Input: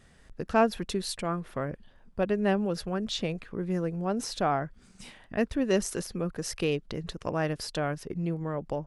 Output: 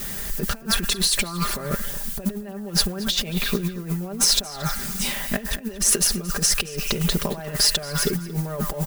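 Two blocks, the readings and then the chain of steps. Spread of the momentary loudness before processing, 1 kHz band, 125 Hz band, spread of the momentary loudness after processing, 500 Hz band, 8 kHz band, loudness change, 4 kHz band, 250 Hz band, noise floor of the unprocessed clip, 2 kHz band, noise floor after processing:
10 LU, −1.5 dB, +6.0 dB, 10 LU, −2.5 dB, +19.0 dB, +8.0 dB, +16.0 dB, +2.5 dB, −58 dBFS, +7.5 dB, −36 dBFS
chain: mu-law and A-law mismatch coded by mu
in parallel at +1.5 dB: brickwall limiter −20.5 dBFS, peak gain reduction 9 dB
on the sum: background noise blue −46 dBFS
on a send: echo through a band-pass that steps 106 ms, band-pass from 1,400 Hz, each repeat 0.7 octaves, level −9.5 dB
on the sum: compressor whose output falls as the input rises −28 dBFS, ratio −0.5
high-shelf EQ 4,200 Hz +7 dB
comb filter 5 ms, depth 76%
slap from a distant wall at 39 metres, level −16 dB

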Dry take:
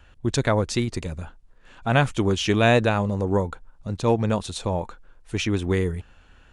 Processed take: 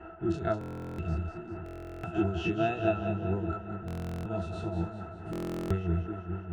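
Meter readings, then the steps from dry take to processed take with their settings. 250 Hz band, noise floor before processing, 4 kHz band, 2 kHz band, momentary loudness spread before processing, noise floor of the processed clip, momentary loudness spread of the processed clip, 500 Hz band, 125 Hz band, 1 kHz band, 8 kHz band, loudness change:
−7.5 dB, −53 dBFS, −18.0 dB, −13.5 dB, 15 LU, −44 dBFS, 10 LU, −9.5 dB, −8.5 dB, −9.5 dB, below −20 dB, −10.0 dB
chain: every bin's largest magnitude spread in time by 60 ms
high-shelf EQ 2,500 Hz +8.5 dB
in parallel at +2 dB: downward compressor, threshold −28 dBFS, peak gain reduction 17 dB
on the sum: noise in a band 230–1,800 Hz −30 dBFS
shaped tremolo triangle 4.6 Hz, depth 65%
resonances in every octave E, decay 0.1 s
on a send: echo with a time of its own for lows and highs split 390 Hz, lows 616 ms, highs 197 ms, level −7.5 dB
on the sum: buffer that repeats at 0:00.59/0:01.64/0:03.86/0:05.31, samples 1,024, times 16
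level −3 dB

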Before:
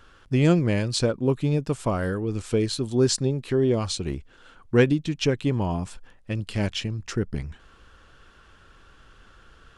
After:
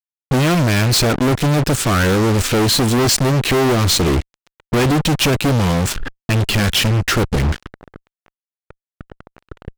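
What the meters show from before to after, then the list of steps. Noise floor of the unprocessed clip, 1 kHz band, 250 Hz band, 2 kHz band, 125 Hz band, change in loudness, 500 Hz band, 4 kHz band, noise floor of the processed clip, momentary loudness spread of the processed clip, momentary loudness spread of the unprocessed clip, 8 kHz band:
−54 dBFS, +14.5 dB, +7.0 dB, +13.0 dB, +9.0 dB, +9.0 dB, +5.5 dB, +13.5 dB, below −85 dBFS, 6 LU, 11 LU, +13.5 dB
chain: flat-topped bell 740 Hz −10 dB 1.3 octaves
in parallel at +1 dB: downward compressor 20 to 1, threshold −33 dBFS, peak gain reduction 20 dB
on the sum: harmonic generator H 3 −40 dB, 5 −29 dB, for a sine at −6.5 dBFS
low-pass that shuts in the quiet parts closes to 440 Hz, open at −21 dBFS
fuzz pedal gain 42 dB, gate −39 dBFS

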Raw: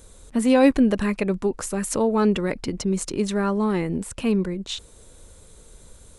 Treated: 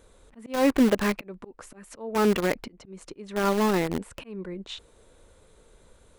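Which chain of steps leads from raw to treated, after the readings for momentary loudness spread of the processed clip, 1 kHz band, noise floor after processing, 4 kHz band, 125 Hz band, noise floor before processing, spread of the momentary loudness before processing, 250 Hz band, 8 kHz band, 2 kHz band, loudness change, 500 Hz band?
21 LU, −1.5 dB, −59 dBFS, −3.0 dB, −6.5 dB, −50 dBFS, 11 LU, −5.5 dB, −9.0 dB, −1.0 dB, −3.0 dB, −4.0 dB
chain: bass and treble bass −7 dB, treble −12 dB
volume swells 351 ms
in parallel at −4 dB: bit reduction 4 bits
on the sum: level −2.5 dB

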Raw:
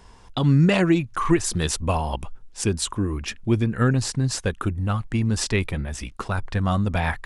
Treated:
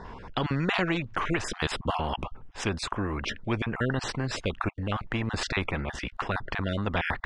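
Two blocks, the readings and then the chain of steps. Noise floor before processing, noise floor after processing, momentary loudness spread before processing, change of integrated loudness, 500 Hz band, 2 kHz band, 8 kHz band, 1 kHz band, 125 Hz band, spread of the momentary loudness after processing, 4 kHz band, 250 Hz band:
−47 dBFS, −47 dBFS, 11 LU, −7.0 dB, −6.0 dB, −0.5 dB, −12.5 dB, −3.0 dB, −10.0 dB, 5 LU, −3.0 dB, −9.0 dB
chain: time-frequency cells dropped at random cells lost 21%
low-pass filter 2,200 Hz 12 dB per octave
every bin compressed towards the loudest bin 2 to 1
level −5.5 dB

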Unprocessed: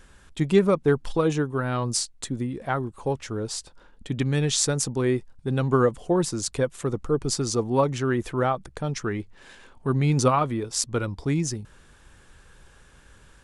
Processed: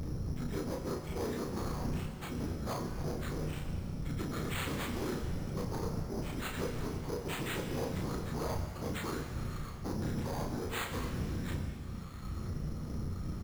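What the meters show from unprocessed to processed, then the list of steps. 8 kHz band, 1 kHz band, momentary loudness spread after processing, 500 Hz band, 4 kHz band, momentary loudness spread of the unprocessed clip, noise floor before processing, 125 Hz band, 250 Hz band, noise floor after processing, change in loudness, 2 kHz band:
−18.5 dB, −13.0 dB, 4 LU, −15.0 dB, −12.0 dB, 10 LU, −54 dBFS, −10.0 dB, −11.0 dB, −42 dBFS, −12.5 dB, −8.5 dB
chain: partials spread apart or drawn together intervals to 84%
wind on the microphone 94 Hz −23 dBFS
parametric band 1,300 Hz +6 dB 0.33 octaves
downward compressor 6 to 1, threshold −34 dBFS, peak gain reduction 25 dB
random phases in short frames
hard clipping −35 dBFS, distortion −9 dB
double-tracking delay 33 ms −4 dB
bad sample-rate conversion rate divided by 8×, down none, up hold
reverb with rising layers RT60 1.9 s, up +7 semitones, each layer −8 dB, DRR 5 dB

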